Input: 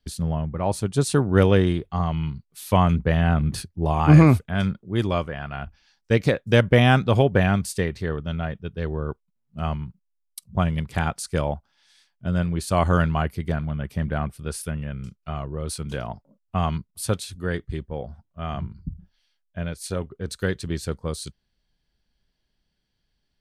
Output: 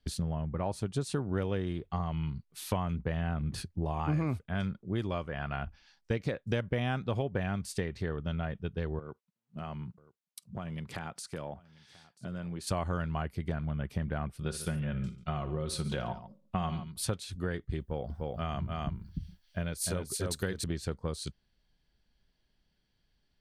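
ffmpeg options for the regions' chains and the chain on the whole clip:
-filter_complex "[0:a]asettb=1/sr,asplit=3[a][b][c];[a]atrim=end=8.994[d];[b]atrim=start=8.99:end=12.67,asetpts=PTS-STARTPTS,afade=t=in:d=0.004:c=qsin,afade=t=out:st=3.676:d=0.004:c=qsin,highpass=130,acompressor=threshold=-36dB:ratio=5:attack=3.2:release=140:knee=1:detection=peak,aecho=1:1:986:0.0891,atrim=end_sample=162288[e];[c]atrim=start=12.666[f];[d][e]acrossfade=d=0.004:c1=hsin:c2=qsin[g];[g][f]acrossfade=d=0.004:c1=qsin:c2=hsin,asettb=1/sr,asplit=3[h][i][j];[h]atrim=end=14.404[k];[i]atrim=start=14.4:end=17.05,asetpts=PTS-STARTPTS,afade=t=in:d=0.004:c=qsin,afade=t=out:st=2.646:d=0.004:c=qsin,equalizer=f=3.7k:w=4.7:g=5.5,aecho=1:1:5.5:0.4,atrim=end_sample=116865,aecho=1:1:60|141:0.224|0.141,atrim=end_sample=116865[l];[j]atrim=start=17.046[m];[k][l]acrossfade=d=0.004:c1=hsin:c2=qsin[n];[n][m]acrossfade=d=0.004:c1=qsin:c2=hsin,asettb=1/sr,asplit=3[o][p][q];[o]atrim=end=17.804[r];[p]atrim=start=17.8:end=20.64,asetpts=PTS-STARTPTS,afade=t=in:d=0.004:c=qsin,afade=t=out:st=2.836:d=0.004:c=qsin,aemphasis=mode=production:type=50fm,aecho=1:1:299:0.668,atrim=end_sample=125244[s];[q]atrim=start=20.636[t];[r][s]acrossfade=d=0.004:c1=hsin:c2=qsin[u];[u][t]acrossfade=d=0.004:c1=qsin:c2=hsin,highshelf=f=8.4k:g=-8.5,acompressor=threshold=-30dB:ratio=5"

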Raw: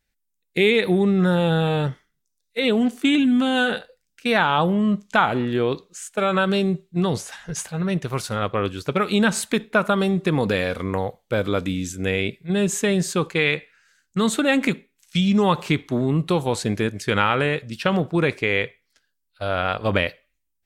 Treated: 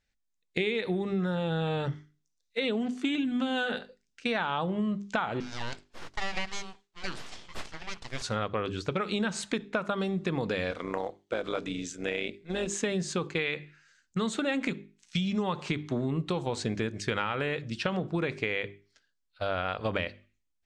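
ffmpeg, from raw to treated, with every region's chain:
-filter_complex "[0:a]asettb=1/sr,asplit=3[a][b][c];[a]atrim=end=5.404[d];[b]atrim=start=5.4:end=8.22,asetpts=PTS-STARTPTS,afade=t=in:d=0.004:c=qsin,afade=t=out:st=2.816:d=0.004:c=qsin,highpass=f=600:w=0.5412,highpass=f=600:w=1.3066,aeval=exprs='abs(val(0))':c=same[e];[c]atrim=start=8.216[f];[d][e]acrossfade=d=0.004:c1=hsin:c2=qsin[g];[g][f]acrossfade=d=0.004:c1=qsin:c2=hsin,asettb=1/sr,asplit=3[h][i][j];[h]atrim=end=10.714[k];[i]atrim=start=10.71:end=12.8,asetpts=PTS-STARTPTS,afade=t=in:d=0.004:c=qsin,afade=t=out:st=2.086:d=0.004:c=qsin,highpass=260,tremolo=f=160:d=0.571,acrusher=bits=8:mode=log:mix=0:aa=0.000001[l];[j]atrim=start=12.796[m];[k][l]acrossfade=d=0.004:c1=hsin:c2=qsin[n];[n][m]acrossfade=d=0.004:c1=qsin:c2=hsin,lowpass=f=7.5k:w=0.5412,lowpass=f=7.5k:w=1.3066,bandreject=f=50:t=h:w=6,bandreject=f=100:t=h:w=6,bandreject=f=150:t=h:w=6,bandreject=f=200:t=h:w=6,bandreject=f=250:t=h:w=6,bandreject=f=300:t=h:w=6,bandreject=f=350:t=h:w=6,bandreject=f=400:t=h:w=6,acompressor=threshold=-24dB:ratio=6,volume=-2.5dB"

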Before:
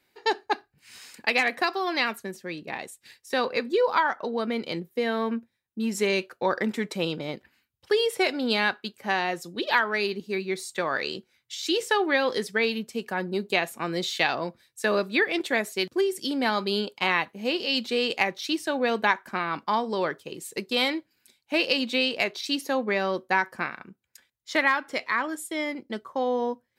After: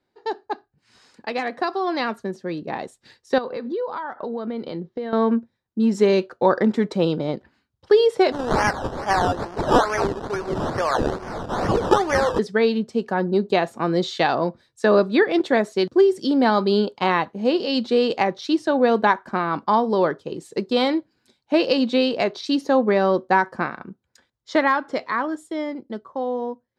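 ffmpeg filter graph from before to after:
-filter_complex "[0:a]asettb=1/sr,asplit=3[a][b][c];[a]atrim=end=3.384[d];[b]atrim=start=3.38:end=5.13,asetpts=PTS-STARTPTS,afade=t=in:d=0.004:c=qsin,afade=t=out:st=1.746:d=0.004:c=qsin,lowpass=f=4.8k:w=0.5412,lowpass=f=4.8k:w=1.3066,bandreject=f=2.5k:w=22,acompressor=threshold=-35dB:ratio=4:attack=3.2:release=140:knee=1:detection=peak[e];[c]atrim=start=5.126[f];[d][e]acrossfade=d=0.004:c1=hsin:c2=qsin[g];[g][f]acrossfade=d=0.004:c1=qsin:c2=hsin,asettb=1/sr,asplit=3[h][i][j];[h]atrim=end=8.324[k];[i]atrim=start=8.32:end=12.39,asetpts=PTS-STARTPTS,afade=t=in:d=0.004:c=qsin,afade=t=out:st=4.066:d=0.004:c=qsin,aeval=exprs='val(0)+0.5*0.0299*sgn(val(0))':c=same,highpass=630,acrusher=samples=16:mix=1:aa=0.000001:lfo=1:lforange=9.6:lforate=2.3[l];[j]atrim=start=12.386[m];[k][l]acrossfade=d=0.004:c1=hsin:c2=qsin[n];[n][m]acrossfade=d=0.004:c1=qsin:c2=hsin,lowpass=3.7k,equalizer=f=2.4k:t=o:w=1.2:g=-13.5,dynaudnorm=f=420:g=9:m=10dB"

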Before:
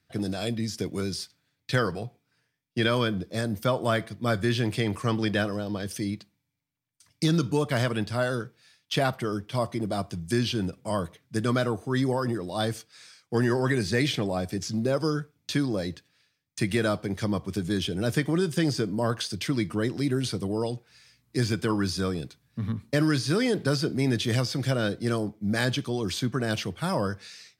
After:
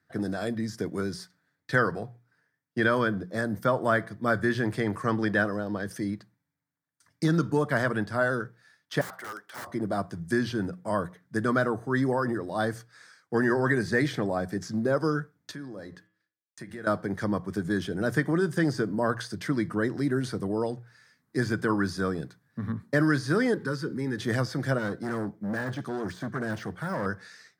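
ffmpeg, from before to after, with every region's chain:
-filter_complex "[0:a]asettb=1/sr,asplit=3[a][b][c];[a]atrim=end=9.014[d];[b]atrim=start=9.01:end=9.67,asetpts=PTS-STARTPTS,afade=t=in:d=0.004:c=qsin,afade=t=out:st=0.656:d=0.004:c=qsin,highpass=810,aeval=exprs='(mod(37.6*val(0)+1,2)-1)/37.6':c=same[e];[c]atrim=start=9.666[f];[d][e]acrossfade=d=0.004:c1=hsin:c2=qsin[g];[g][f]acrossfade=d=0.004:c1=qsin:c2=hsin,asettb=1/sr,asplit=3[h][i][j];[h]atrim=end=15.514[k];[i]atrim=start=15.51:end=16.87,asetpts=PTS-STARTPTS,afade=t=in:d=0.004:c=qsin,afade=t=out:st=1.356:d=0.004:c=qsin,agate=range=-33dB:threshold=-58dB:ratio=3:release=100:detection=peak,acompressor=threshold=-40dB:ratio=3:attack=3.2:release=140:knee=1:detection=peak,bandreject=f=106.2:t=h:w=4,bandreject=f=212.4:t=h:w=4,bandreject=f=318.6:t=h:w=4,bandreject=f=424.8:t=h:w=4,bandreject=f=531:t=h:w=4,bandreject=f=637.2:t=h:w=4,bandreject=f=743.4:t=h:w=4,bandreject=f=849.6:t=h:w=4,bandreject=f=955.8:t=h:w=4,bandreject=f=1.062k:t=h:w=4,bandreject=f=1.1682k:t=h:w=4,bandreject=f=1.2744k:t=h:w=4,bandreject=f=1.3806k:t=h:w=4,bandreject=f=1.4868k:t=h:w=4,bandreject=f=1.593k:t=h:w=4,bandreject=f=1.6992k:t=h:w=4,bandreject=f=1.8054k:t=h:w=4,bandreject=f=1.9116k:t=h:w=4,bandreject=f=2.0178k:t=h:w=4,bandreject=f=2.124k:t=h:w=4,bandreject=f=2.2302k:t=h:w=4,bandreject=f=2.3364k:t=h:w=4,bandreject=f=2.4426k:t=h:w=4,bandreject=f=2.5488k:t=h:w=4,bandreject=f=2.655k:t=h:w=4,bandreject=f=2.7612k:t=h:w=4,bandreject=f=2.8674k:t=h:w=4,bandreject=f=2.9736k:t=h:w=4,bandreject=f=3.0798k:t=h:w=4,bandreject=f=3.186k:t=h:w=4,bandreject=f=3.2922k:t=h:w=4,bandreject=f=3.3984k:t=h:w=4[l];[j]atrim=start=16.866[m];[k][l]acrossfade=d=0.004:c1=hsin:c2=qsin[n];[n][m]acrossfade=d=0.004:c1=qsin:c2=hsin,asettb=1/sr,asplit=3[o][p][q];[o]atrim=end=23.544[r];[p]atrim=start=23.54:end=24.18,asetpts=PTS-STARTPTS,afade=t=in:d=0.004:c=qsin,afade=t=out:st=0.636:d=0.004:c=qsin,acompressor=threshold=-34dB:ratio=1.5:attack=3.2:release=140:knee=1:detection=peak,asuperstop=centerf=670:order=20:qfactor=2.8[s];[q]atrim=start=24.176[t];[r][s]acrossfade=d=0.004:c1=hsin:c2=qsin[u];[u][t]acrossfade=d=0.004:c1=qsin:c2=hsin,asettb=1/sr,asplit=3[v][w][x];[v]atrim=end=24.784[y];[w]atrim=start=24.78:end=27.06,asetpts=PTS-STARTPTS,afade=t=in:d=0.004:c=qsin,afade=t=out:st=2.276:d=0.004:c=qsin,deesser=0.9,volume=27.5dB,asoftclip=hard,volume=-27.5dB[z];[x]atrim=start=27.056[aa];[y][z]acrossfade=d=0.004:c1=hsin:c2=qsin[ab];[ab][aa]acrossfade=d=0.004:c1=qsin:c2=hsin,highpass=110,highshelf=f=2.1k:t=q:w=3:g=-6.5,bandreject=f=60:t=h:w=6,bandreject=f=120:t=h:w=6,bandreject=f=180:t=h:w=6"

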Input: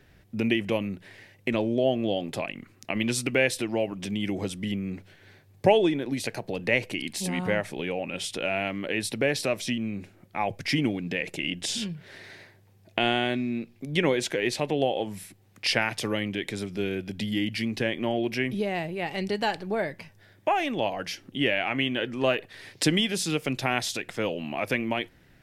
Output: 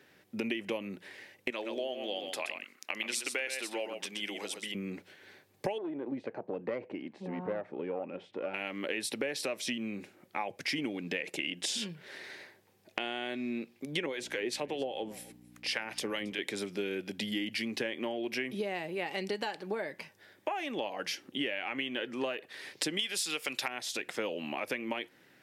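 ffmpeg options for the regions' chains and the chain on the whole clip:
-filter_complex "[0:a]asettb=1/sr,asplit=3[a][b][c];[a]atrim=end=1.504[d];[b]atrim=start=1.5:end=4.75,asetpts=PTS-STARTPTS,afade=t=in:d=0.004:c=qsin,afade=t=out:st=3.246:d=0.004:c=qsin,highpass=f=1k:p=1,aecho=1:1:124:0.422,atrim=end_sample=143325[e];[c]atrim=start=4.746[f];[d][e]acrossfade=d=0.004:c1=hsin:c2=qsin[g];[g][f]acrossfade=d=0.004:c1=qsin:c2=hsin,asettb=1/sr,asplit=3[h][i][j];[h]atrim=end=5.784[k];[i]atrim=start=5.78:end=8.54,asetpts=PTS-STARTPTS,afade=t=in:d=0.004:c=qsin,afade=t=out:st=2.756:d=0.004:c=qsin,lowpass=1k,aeval=exprs='(tanh(7.94*val(0)+0.5)-tanh(0.5))/7.94':c=same[l];[j]atrim=start=8.536[m];[k][l]acrossfade=d=0.004:c1=hsin:c2=qsin[n];[n][m]acrossfade=d=0.004:c1=qsin:c2=hsin,asettb=1/sr,asplit=3[o][p][q];[o]atrim=end=14.064[r];[p]atrim=start=14.06:end=16.39,asetpts=PTS-STARTPTS,afade=t=in:d=0.004:c=qsin,afade=t=out:st=2.326:d=0.004:c=qsin,acrossover=split=690[s][t];[s]aeval=exprs='val(0)*(1-0.7/2+0.7/2*cos(2*PI*5*n/s))':c=same[u];[t]aeval=exprs='val(0)*(1-0.7/2-0.7/2*cos(2*PI*5*n/s))':c=same[v];[u][v]amix=inputs=2:normalize=0,aeval=exprs='val(0)+0.00708*(sin(2*PI*60*n/s)+sin(2*PI*2*60*n/s)/2+sin(2*PI*3*60*n/s)/3+sin(2*PI*4*60*n/s)/4+sin(2*PI*5*60*n/s)/5)':c=same,aecho=1:1:273:0.0668,atrim=end_sample=102753[w];[q]atrim=start=16.386[x];[r][w]acrossfade=d=0.004:c1=hsin:c2=qsin[y];[y][x]acrossfade=d=0.004:c1=qsin:c2=hsin,asettb=1/sr,asplit=3[z][aa][ab];[z]atrim=end=22.994[ac];[aa]atrim=start=22.99:end=23.68,asetpts=PTS-STARTPTS,afade=t=in:d=0.004:c=qsin,afade=t=out:st=0.686:d=0.004:c=qsin,tiltshelf=f=690:g=-7.5,bandreject=f=6.2k:w=16,acontrast=44[ad];[ab]atrim=start=23.676[ae];[ac][ad]acrossfade=d=0.004:c1=hsin:c2=qsin[af];[af][ae]acrossfade=d=0.004:c1=qsin:c2=hsin,highpass=280,acompressor=threshold=-30dB:ratio=16,bandreject=f=680:w=12"

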